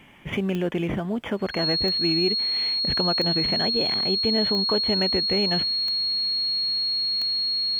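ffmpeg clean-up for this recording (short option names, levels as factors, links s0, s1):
-af "adeclick=t=4,bandreject=f=4300:w=30"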